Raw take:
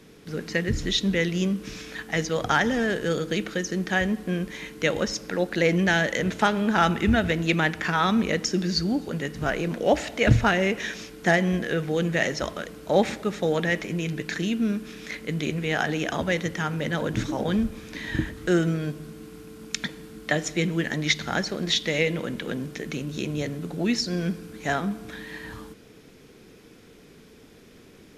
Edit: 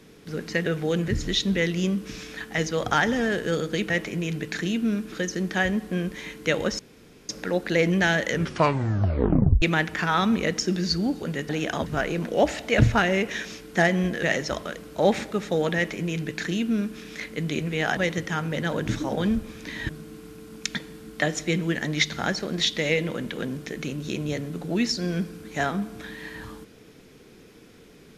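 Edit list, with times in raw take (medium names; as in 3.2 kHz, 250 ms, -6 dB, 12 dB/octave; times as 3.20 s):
5.15 s: insert room tone 0.50 s
6.15 s: tape stop 1.33 s
11.72–12.14 s: move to 0.66 s
13.67–14.89 s: copy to 3.48 s
15.88–16.25 s: move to 9.35 s
18.17–18.98 s: delete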